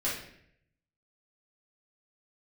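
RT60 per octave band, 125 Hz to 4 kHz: 1.1, 0.80, 0.75, 0.60, 0.75, 0.55 seconds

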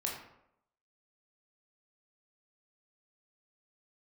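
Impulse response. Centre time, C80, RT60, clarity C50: 40 ms, 7.0 dB, 0.80 s, 4.0 dB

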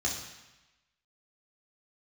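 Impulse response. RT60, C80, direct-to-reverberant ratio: 1.0 s, 7.0 dB, −3.0 dB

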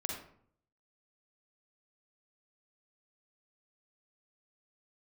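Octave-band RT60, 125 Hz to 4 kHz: 0.80, 0.70, 0.60, 0.60, 0.45, 0.35 seconds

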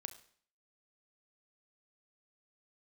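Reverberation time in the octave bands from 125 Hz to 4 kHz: 0.55, 0.60, 0.55, 0.55, 0.55, 0.55 seconds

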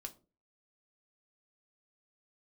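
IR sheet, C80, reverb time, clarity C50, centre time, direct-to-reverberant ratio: 23.5 dB, 0.35 s, 17.5 dB, 6 ms, 4.5 dB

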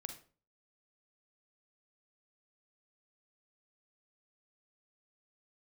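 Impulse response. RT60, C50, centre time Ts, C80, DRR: 0.40 s, 8.5 dB, 14 ms, 14.0 dB, 6.0 dB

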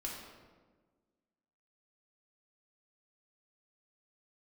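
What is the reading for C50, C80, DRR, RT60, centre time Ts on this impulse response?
1.5 dB, 4.0 dB, −3.5 dB, 1.4 s, 66 ms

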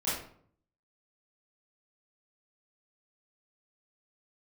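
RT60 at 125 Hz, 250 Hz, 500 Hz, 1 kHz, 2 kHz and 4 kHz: 0.85, 0.70, 0.60, 0.55, 0.45, 0.35 seconds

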